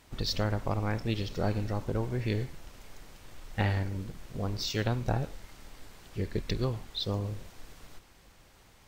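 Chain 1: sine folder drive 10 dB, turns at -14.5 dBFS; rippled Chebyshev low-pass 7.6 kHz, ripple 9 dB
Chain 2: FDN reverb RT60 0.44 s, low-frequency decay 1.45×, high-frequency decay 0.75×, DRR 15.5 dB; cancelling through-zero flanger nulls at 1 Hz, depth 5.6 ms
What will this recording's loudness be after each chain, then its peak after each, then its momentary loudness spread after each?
-30.0 LUFS, -35.5 LUFS; -15.5 dBFS, -19.0 dBFS; 17 LU, 15 LU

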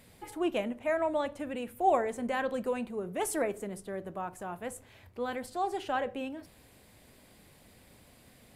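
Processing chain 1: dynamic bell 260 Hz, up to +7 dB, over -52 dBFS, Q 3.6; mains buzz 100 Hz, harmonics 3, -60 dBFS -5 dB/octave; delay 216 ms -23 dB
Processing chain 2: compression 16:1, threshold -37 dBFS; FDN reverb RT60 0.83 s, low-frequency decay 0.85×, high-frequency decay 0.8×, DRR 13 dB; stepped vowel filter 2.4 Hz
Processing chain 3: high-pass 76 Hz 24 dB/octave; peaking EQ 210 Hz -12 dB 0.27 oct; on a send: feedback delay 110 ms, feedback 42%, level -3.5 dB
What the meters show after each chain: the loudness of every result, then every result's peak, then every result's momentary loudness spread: -32.5 LUFS, -52.0 LUFS, -32.0 LUFS; -14.5 dBFS, -33.0 dBFS, -14.5 dBFS; 11 LU, 14 LU, 12 LU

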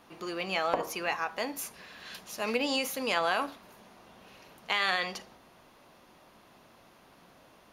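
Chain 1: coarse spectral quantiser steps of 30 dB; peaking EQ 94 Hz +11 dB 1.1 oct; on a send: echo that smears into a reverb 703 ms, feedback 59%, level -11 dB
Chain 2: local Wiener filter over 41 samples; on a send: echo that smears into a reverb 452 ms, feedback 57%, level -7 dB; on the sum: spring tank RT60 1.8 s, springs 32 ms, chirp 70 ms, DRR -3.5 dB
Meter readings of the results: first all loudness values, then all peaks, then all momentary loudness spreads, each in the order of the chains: -33.0 LUFS, -29.0 LUFS; -12.0 dBFS, -11.0 dBFS; 19 LU, 17 LU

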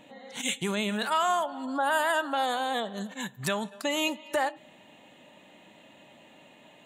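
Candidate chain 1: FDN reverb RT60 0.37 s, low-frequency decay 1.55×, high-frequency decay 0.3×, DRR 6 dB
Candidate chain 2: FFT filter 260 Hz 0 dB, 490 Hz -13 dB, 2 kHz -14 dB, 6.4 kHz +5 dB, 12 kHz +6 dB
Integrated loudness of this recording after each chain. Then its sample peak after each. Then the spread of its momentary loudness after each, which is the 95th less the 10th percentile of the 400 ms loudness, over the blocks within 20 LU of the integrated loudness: -28.0 LUFS, -34.5 LUFS; -13.0 dBFS, -10.5 dBFS; 10 LU, 7 LU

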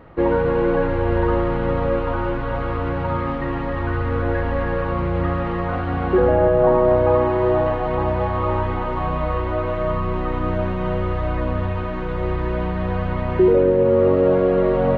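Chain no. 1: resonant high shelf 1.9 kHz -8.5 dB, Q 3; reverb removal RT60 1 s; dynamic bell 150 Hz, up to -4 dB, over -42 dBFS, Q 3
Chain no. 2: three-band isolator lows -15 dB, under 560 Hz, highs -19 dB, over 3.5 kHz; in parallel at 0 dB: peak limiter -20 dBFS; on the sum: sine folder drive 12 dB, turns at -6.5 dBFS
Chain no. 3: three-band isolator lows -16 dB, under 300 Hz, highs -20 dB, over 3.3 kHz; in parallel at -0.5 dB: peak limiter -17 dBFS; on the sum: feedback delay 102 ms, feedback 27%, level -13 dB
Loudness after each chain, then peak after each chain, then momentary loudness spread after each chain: -22.5 LUFS, -10.0 LUFS, -19.0 LUFS; -5.5 dBFS, -6.5 dBFS, -4.5 dBFS; 8 LU, 2 LU, 7 LU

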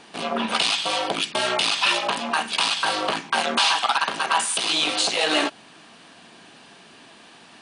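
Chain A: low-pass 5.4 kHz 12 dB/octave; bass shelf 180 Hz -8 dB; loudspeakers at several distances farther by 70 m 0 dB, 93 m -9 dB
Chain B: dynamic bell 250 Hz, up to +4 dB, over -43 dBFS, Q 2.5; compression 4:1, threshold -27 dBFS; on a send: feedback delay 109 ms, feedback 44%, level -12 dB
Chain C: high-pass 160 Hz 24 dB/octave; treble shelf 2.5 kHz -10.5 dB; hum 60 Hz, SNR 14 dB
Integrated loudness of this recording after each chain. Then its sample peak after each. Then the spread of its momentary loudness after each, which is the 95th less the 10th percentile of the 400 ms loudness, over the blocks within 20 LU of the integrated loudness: -19.0 LUFS, -28.0 LUFS, -25.5 LUFS; -5.0 dBFS, -12.0 dBFS, -9.5 dBFS; 5 LU, 20 LU, 20 LU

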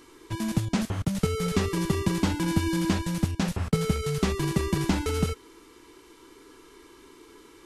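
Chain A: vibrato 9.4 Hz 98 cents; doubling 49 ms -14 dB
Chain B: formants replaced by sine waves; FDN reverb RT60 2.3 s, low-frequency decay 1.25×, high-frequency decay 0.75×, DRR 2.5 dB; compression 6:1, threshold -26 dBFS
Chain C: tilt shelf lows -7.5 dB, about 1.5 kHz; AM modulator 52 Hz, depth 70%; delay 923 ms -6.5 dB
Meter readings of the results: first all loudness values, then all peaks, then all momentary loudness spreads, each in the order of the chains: -27.5 LUFS, -31.0 LUFS, -33.0 LUFS; -9.5 dBFS, -17.5 dBFS, -12.5 dBFS; 3 LU, 19 LU, 22 LU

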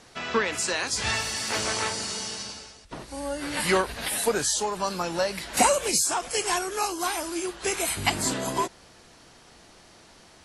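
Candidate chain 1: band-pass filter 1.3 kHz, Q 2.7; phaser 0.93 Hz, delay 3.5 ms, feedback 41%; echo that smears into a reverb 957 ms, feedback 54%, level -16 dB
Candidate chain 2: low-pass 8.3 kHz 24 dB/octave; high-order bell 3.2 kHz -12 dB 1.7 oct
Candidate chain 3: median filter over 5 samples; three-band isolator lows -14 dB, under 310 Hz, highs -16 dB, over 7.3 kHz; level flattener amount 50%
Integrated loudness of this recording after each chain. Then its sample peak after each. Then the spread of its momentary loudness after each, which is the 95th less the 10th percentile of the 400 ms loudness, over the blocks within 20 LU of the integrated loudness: -35.5 LUFS, -28.5 LUFS, -24.0 LUFS; -17.0 dBFS, -10.5 dBFS, -7.5 dBFS; 18 LU, 10 LU, 13 LU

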